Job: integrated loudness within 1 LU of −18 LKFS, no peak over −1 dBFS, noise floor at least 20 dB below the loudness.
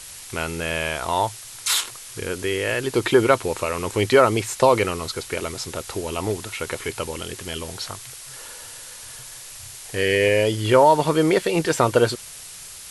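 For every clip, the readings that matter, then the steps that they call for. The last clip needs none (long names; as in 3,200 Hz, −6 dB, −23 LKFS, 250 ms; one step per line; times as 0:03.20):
background noise floor −40 dBFS; target noise floor −42 dBFS; integrated loudness −22.0 LKFS; sample peak −3.5 dBFS; target loudness −18.0 LKFS
→ noise reduction from a noise print 6 dB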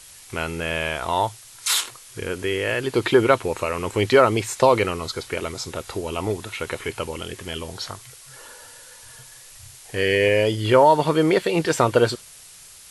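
background noise floor −45 dBFS; integrated loudness −21.5 LKFS; sample peak −3.5 dBFS; target loudness −18.0 LKFS
→ level +3.5 dB
brickwall limiter −1 dBFS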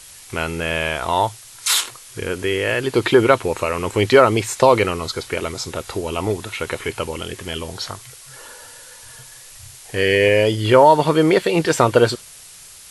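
integrated loudness −18.5 LKFS; sample peak −1.0 dBFS; background noise floor −42 dBFS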